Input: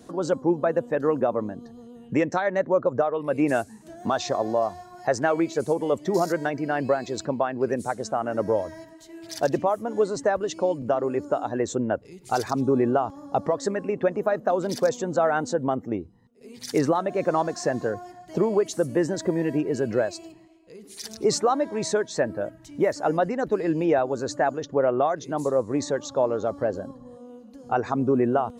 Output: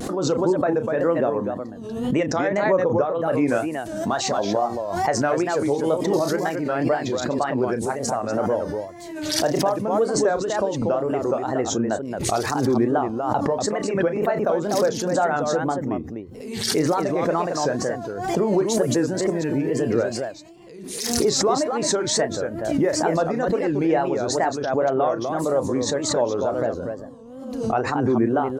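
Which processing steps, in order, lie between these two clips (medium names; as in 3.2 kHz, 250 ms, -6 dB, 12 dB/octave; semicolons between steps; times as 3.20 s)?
loudspeakers at several distances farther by 11 m -10 dB, 81 m -6 dB; wow and flutter 140 cents; swell ahead of each attack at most 47 dB/s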